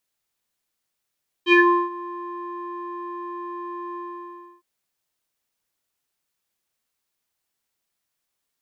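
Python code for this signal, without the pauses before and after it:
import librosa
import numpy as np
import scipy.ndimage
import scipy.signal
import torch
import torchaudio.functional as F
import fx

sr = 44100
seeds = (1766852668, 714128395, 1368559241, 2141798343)

y = fx.sub_voice(sr, note=65, wave='square', cutoff_hz=1200.0, q=7.2, env_oct=1.5, env_s=0.21, attack_ms=63.0, decay_s=0.37, sustain_db=-21.0, release_s=0.66, note_s=2.5, slope=12)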